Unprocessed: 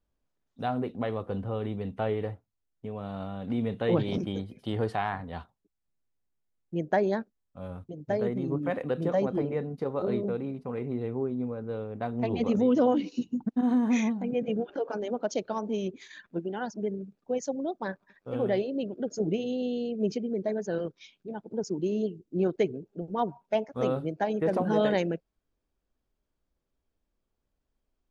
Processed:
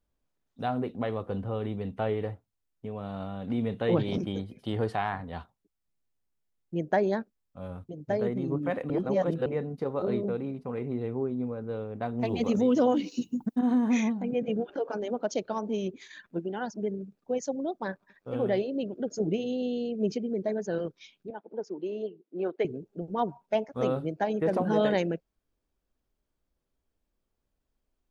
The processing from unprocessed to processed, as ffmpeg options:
-filter_complex "[0:a]asettb=1/sr,asplit=3[a][b][c];[a]atrim=end=12.204[d];[b]atrim=start=12.2:end=13.59,asetpts=PTS-STARTPTS,afade=t=in:d=0.004:c=qsin,afade=t=out:st=1.386:d=0.004:c=qsin,aemphasis=mode=production:type=50fm[e];[c]atrim=start=13.586[f];[d][e]acrossfade=d=0.004:c1=hsin:c2=qsin[g];[g][f]acrossfade=d=0.004:c1=qsin:c2=hsin,asettb=1/sr,asplit=3[h][i][j];[h]atrim=end=21.304[k];[i]atrim=start=21.3:end=22.65,asetpts=PTS-STARTPTS,afade=t=in:d=0.004:c=qsin,afade=t=out:st=1.346:d=0.004:c=qsin,highpass=410,lowpass=2.9k[l];[j]atrim=start=22.646[m];[k][l]acrossfade=d=0.004:c1=hsin:c2=qsin[n];[n][m]acrossfade=d=0.004:c1=qsin:c2=hsin,asplit=3[o][p][q];[o]atrim=end=8.902[r];[p]atrim=start=8.898:end=9.462,asetpts=PTS-STARTPTS,areverse[s];[q]atrim=start=9.458[t];[r][s]acrossfade=d=0.004:c1=hsin:c2=hsin[u];[u][t]acrossfade=d=0.004:c1=hsin:c2=hsin"

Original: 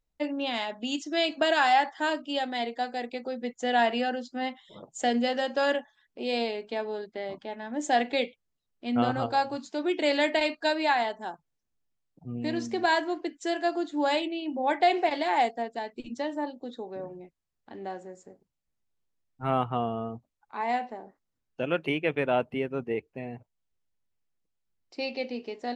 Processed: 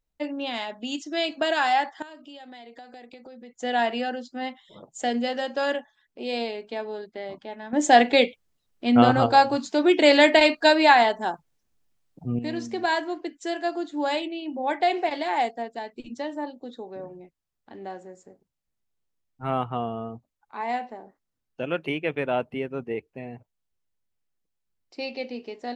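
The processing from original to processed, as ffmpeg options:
-filter_complex "[0:a]asettb=1/sr,asplit=3[a][b][c];[a]atrim=end=2.024[d];[b]atrim=start=2.02:end=3.59,asetpts=PTS-STARTPTS,afade=t=in:d=0.004:c=qsin,afade=t=out:st=1.566:d=0.004:c=qsin,acompressor=threshold=-41dB:ratio=8:attack=3.2:release=140:knee=1:detection=peak[e];[c]atrim=start=3.586[f];[d][e]acrossfade=d=0.004:c1=hsin:c2=qsin[g];[g][f]acrossfade=d=0.004:c1=qsin:c2=hsin,asplit=3[h][i][j];[h]atrim=end=7.732[k];[i]atrim=start=7.728:end=12.392,asetpts=PTS-STARTPTS,volume=9dB[l];[j]atrim=start=12.388[m];[k][l]acrossfade=d=0.004:c1=hsin:c2=hsin[n];[n][m]acrossfade=d=0.004:c1=hsin:c2=hsin"

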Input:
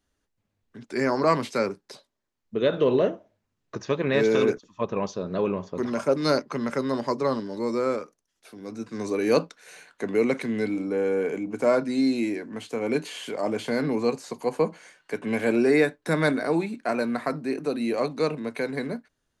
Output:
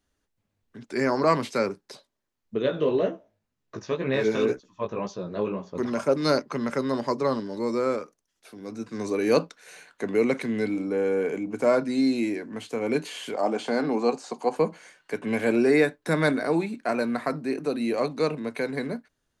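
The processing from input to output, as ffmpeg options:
-filter_complex "[0:a]asettb=1/sr,asplit=3[a][b][c];[a]atrim=end=2.624[d];[b]atrim=start=2.62:end=5.75,asetpts=PTS-STARTPTS,afade=t=in:d=0.004:c=qsin,afade=t=out:st=3.126:d=0.004:c=qsin,flanger=delay=15:depth=4.4:speed=2[e];[c]atrim=start=5.746[f];[d][e]acrossfade=d=0.004:c1=hsin:c2=qsin[g];[g][f]acrossfade=d=0.004:c1=qsin:c2=hsin,asettb=1/sr,asplit=3[h][i][j];[h]atrim=end=13.344[k];[i]atrim=start=13.34:end=14.56,asetpts=PTS-STARTPTS,afade=t=in:d=0.004:c=qsin,afade=t=out:st=1.216:d=0.004:c=qsin,highpass=f=180:w=0.5412,highpass=f=180:w=1.3066,equalizer=f=770:t=q:w=4:g=8,equalizer=f=1.3k:t=q:w=4:g=3,equalizer=f=2k:t=q:w=4:g=-4,lowpass=f=9k:w=0.5412,lowpass=f=9k:w=1.3066[l];[j]atrim=start=14.556[m];[k][l]acrossfade=d=0.004:c1=hsin:c2=qsin[n];[n][m]acrossfade=d=0.004:c1=qsin:c2=hsin"

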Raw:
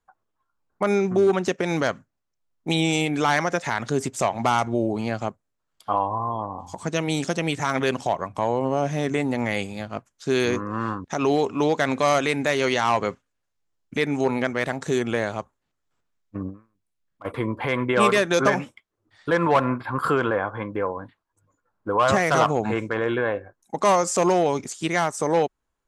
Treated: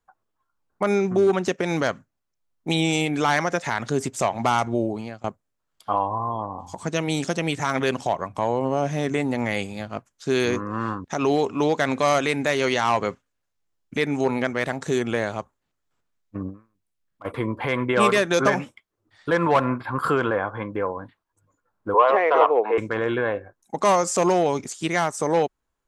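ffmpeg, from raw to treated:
-filter_complex "[0:a]asettb=1/sr,asplit=3[a][b][c];[a]atrim=end=21.944[d];[b]atrim=start=21.94:end=22.78,asetpts=PTS-STARTPTS,afade=t=in:d=0.004:c=qsin,afade=t=out:st=0.836:d=0.004:c=qsin,highpass=f=360:w=0.5412,highpass=f=360:w=1.3066,equalizer=f=460:t=q:w=4:g=9,equalizer=f=990:t=q:w=4:g=6,equalizer=f=1.5k:t=q:w=4:g=-5,lowpass=f=2.8k:w=0.5412,lowpass=f=2.8k:w=1.3066[e];[c]atrim=start=22.776[f];[d][e]acrossfade=d=0.004:c1=hsin:c2=qsin[g];[g][f]acrossfade=d=0.004:c1=qsin:c2=hsin,asplit=2[h][i];[h]atrim=end=5.24,asetpts=PTS-STARTPTS,afade=t=out:st=4.8:d=0.44:silence=0.0707946[j];[i]atrim=start=5.24,asetpts=PTS-STARTPTS,afade=t=in:d=0.004:c=hsin:silence=0.0707946[k];[j][k]concat=n=2:v=0:a=1"

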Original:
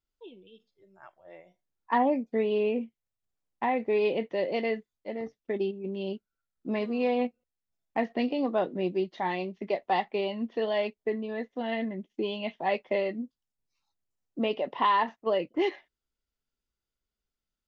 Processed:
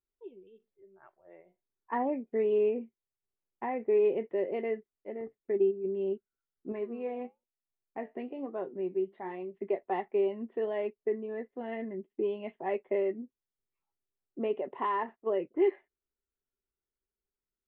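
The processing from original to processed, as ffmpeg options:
-filter_complex "[0:a]asettb=1/sr,asplit=3[a][b][c];[a]atrim=end=2.094[d];[b]atrim=start=2.09:end=2.7,asetpts=PTS-STARTPTS,afade=t=in:d=0.004:c=qsin,afade=t=out:st=0.606:d=0.004:c=qsin,highshelf=f=3.9k:g=10.5[e];[c]atrim=start=2.696[f];[d][e]acrossfade=d=0.004:c1=hsin:c2=qsin[g];[g][f]acrossfade=d=0.004:c1=qsin:c2=hsin,asettb=1/sr,asplit=3[h][i][j];[h]atrim=end=6.724[k];[i]atrim=start=6.72:end=9.54,asetpts=PTS-STARTPTS,afade=t=in:d=0.004:c=qsin,afade=t=out:st=2.816:d=0.004:c=qsin,flanger=delay=6.1:depth=5.4:regen=72:speed=1.1:shape=triangular[l];[j]atrim=start=9.536[m];[k][l]acrossfade=d=0.004:c1=hsin:c2=qsin[n];[n][m]acrossfade=d=0.004:c1=qsin:c2=hsin,lowpass=f=2.3k:w=0.5412,lowpass=f=2.3k:w=1.3066,equalizer=f=390:t=o:w=0.35:g=12,volume=-7.5dB"

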